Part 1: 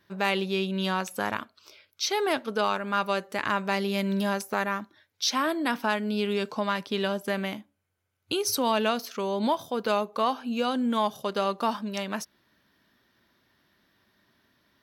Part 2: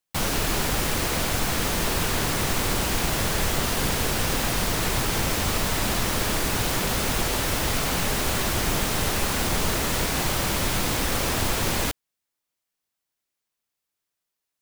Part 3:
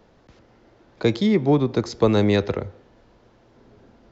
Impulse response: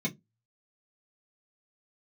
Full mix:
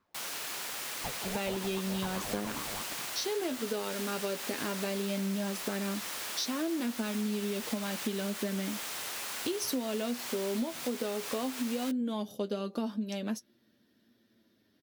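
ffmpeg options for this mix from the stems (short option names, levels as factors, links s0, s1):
-filter_complex "[0:a]equalizer=f=250:t=o:w=1:g=9,equalizer=f=500:t=o:w=1:g=4,equalizer=f=1000:t=o:w=1:g=-10,equalizer=f=2000:t=o:w=1:g=-4,flanger=delay=8.6:depth=3.7:regen=40:speed=0.16:shape=sinusoidal,adelay=1150,volume=1.06[s0];[1:a]highpass=f=1300:p=1,volume=0.316[s1];[2:a]highpass=300,aeval=exprs='val(0)*sin(2*PI*450*n/s+450*0.6/5*sin(2*PI*5*n/s))':c=same,volume=0.188,asplit=2[s2][s3];[s3]volume=0.631,aecho=0:1:421:1[s4];[s0][s1][s2][s4]amix=inputs=4:normalize=0,lowshelf=f=110:g=-5.5,acompressor=threshold=0.0316:ratio=6"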